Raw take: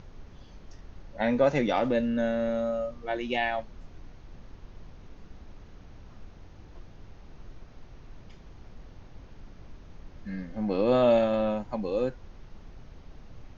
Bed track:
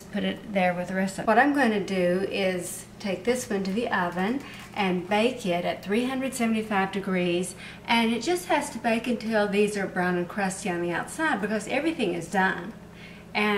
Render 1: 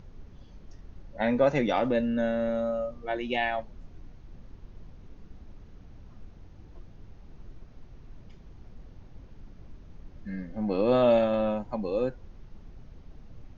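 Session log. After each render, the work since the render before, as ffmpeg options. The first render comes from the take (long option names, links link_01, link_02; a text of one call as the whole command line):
ffmpeg -i in.wav -af "afftdn=noise_reduction=6:noise_floor=-50" out.wav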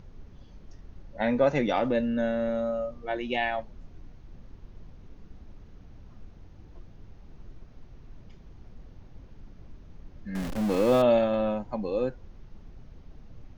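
ffmpeg -i in.wav -filter_complex "[0:a]asettb=1/sr,asplit=3[link_01][link_02][link_03];[link_01]atrim=end=10.354[link_04];[link_02]atrim=start=10.35:end=11.02,asetpts=PTS-STARTPTS,afade=type=in:duration=0.004:curve=qsin,afade=type=out:start_time=0.666:duration=0.004:curve=qsin,aeval=exprs='val(0)+0.5*0.0316*sgn(val(0))':channel_layout=same[link_05];[link_03]atrim=start=11.016[link_06];[link_04][link_05]acrossfade=duration=0.004:curve1=hsin:curve2=qsin[link_07];[link_07][link_06]acrossfade=duration=0.004:curve1=qsin:curve2=hsin" out.wav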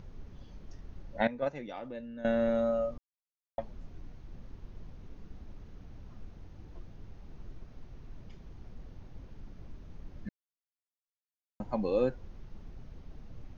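ffmpeg -i in.wav -filter_complex "[0:a]asettb=1/sr,asplit=3[link_01][link_02][link_03];[link_01]atrim=end=1.274[link_04];[link_02]atrim=start=1.27:end=2.25,asetpts=PTS-STARTPTS,afade=type=in:duration=0.004:curve=qsin,afade=type=out:start_time=0.976:duration=0.004:curve=qsin,agate=range=-16dB:threshold=-19dB:ratio=16:release=100:detection=peak[link_05];[link_03]atrim=start=2.246[link_06];[link_04][link_05]acrossfade=duration=0.004:curve1=hsin:curve2=qsin[link_07];[link_07][link_06]acrossfade=duration=0.004:curve1=qsin:curve2=hsin,asplit=5[link_08][link_09][link_10][link_11][link_12];[link_08]atrim=end=2.98,asetpts=PTS-STARTPTS,afade=type=out:start_time=2.976:duration=0.004:curve=hsin[link_13];[link_09]atrim=start=2.98:end=3.58,asetpts=PTS-STARTPTS,volume=0[link_14];[link_10]atrim=start=3.58:end=10.29,asetpts=PTS-STARTPTS,afade=type=in:duration=0.004:curve=hsin,afade=type=out:start_time=6.706:duration=0.004:curve=hsin[link_15];[link_11]atrim=start=10.29:end=11.6,asetpts=PTS-STARTPTS,volume=0[link_16];[link_12]atrim=start=11.6,asetpts=PTS-STARTPTS,afade=type=in:duration=0.004:curve=hsin[link_17];[link_13][link_14][link_15][link_16][link_17]concat=n=5:v=0:a=1" out.wav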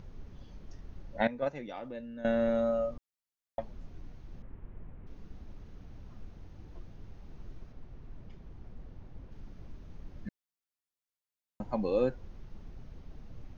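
ffmpeg -i in.wav -filter_complex "[0:a]asettb=1/sr,asplit=3[link_01][link_02][link_03];[link_01]atrim=end=4.424[link_04];[link_02]atrim=start=4.42:end=5.07,asetpts=PTS-STARTPTS,afade=type=in:duration=0.004:curve=qsin,afade=type=out:start_time=0.646:duration=0.004:curve=qsin,lowpass=frequency=2400:width=0.5412,lowpass=frequency=2400:width=1.3066[link_05];[link_03]atrim=start=5.066[link_06];[link_04][link_05]acrossfade=duration=0.004:curve1=hsin:curve2=qsin[link_07];[link_07][link_06]acrossfade=duration=0.004:curve1=qsin:curve2=hsin,asettb=1/sr,asplit=3[link_08][link_09][link_10];[link_08]atrim=end=7.724[link_11];[link_09]atrim=start=7.72:end=9.32,asetpts=PTS-STARTPTS,afade=type=in:duration=0.004:curve=qsin,afade=type=out:start_time=1.596:duration=0.004:curve=qsin,highshelf=frequency=3500:gain=-8.5[link_12];[link_10]atrim=start=9.316[link_13];[link_11][link_12]acrossfade=duration=0.004:curve1=hsin:curve2=qsin[link_14];[link_14][link_13]acrossfade=duration=0.004:curve1=qsin:curve2=hsin" out.wav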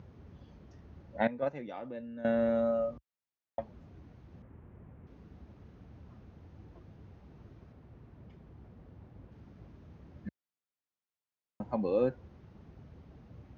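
ffmpeg -i in.wav -af "highpass=frequency=63:width=0.5412,highpass=frequency=63:width=1.3066,highshelf=frequency=4000:gain=-12" out.wav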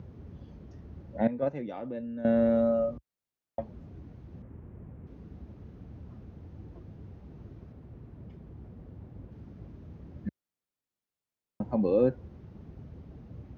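ffmpeg -i in.wav -filter_complex "[0:a]acrossover=split=550[link_01][link_02];[link_01]acontrast=71[link_03];[link_02]alimiter=level_in=6dB:limit=-24dB:level=0:latency=1:release=36,volume=-6dB[link_04];[link_03][link_04]amix=inputs=2:normalize=0" out.wav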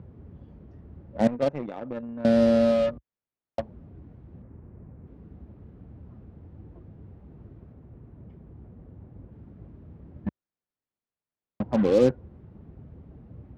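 ffmpeg -i in.wav -filter_complex "[0:a]asplit=2[link_01][link_02];[link_02]acrusher=bits=4:mix=0:aa=0.5,volume=-3dB[link_03];[link_01][link_03]amix=inputs=2:normalize=0,adynamicsmooth=sensitivity=4.5:basefreq=2700" out.wav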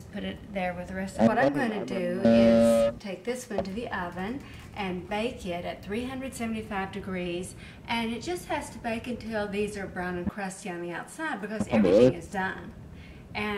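ffmpeg -i in.wav -i bed.wav -filter_complex "[1:a]volume=-7dB[link_01];[0:a][link_01]amix=inputs=2:normalize=0" out.wav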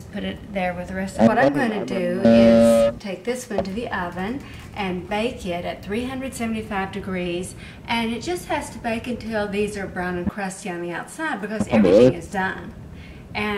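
ffmpeg -i in.wav -af "volume=6.5dB,alimiter=limit=-3dB:level=0:latency=1" out.wav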